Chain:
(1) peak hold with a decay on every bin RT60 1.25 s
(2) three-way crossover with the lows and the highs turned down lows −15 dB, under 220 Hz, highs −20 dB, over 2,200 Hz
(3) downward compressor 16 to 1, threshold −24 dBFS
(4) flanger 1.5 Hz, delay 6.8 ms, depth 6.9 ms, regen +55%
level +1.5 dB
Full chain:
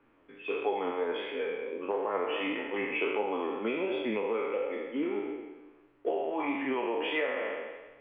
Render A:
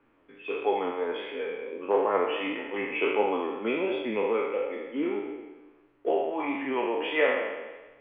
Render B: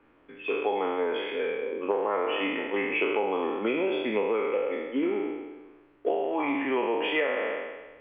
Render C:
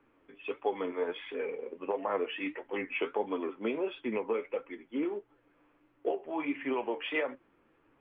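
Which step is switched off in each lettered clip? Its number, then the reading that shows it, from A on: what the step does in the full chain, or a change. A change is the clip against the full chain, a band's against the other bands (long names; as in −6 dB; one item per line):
3, average gain reduction 2.0 dB
4, change in integrated loudness +4.0 LU
1, change in crest factor +2.5 dB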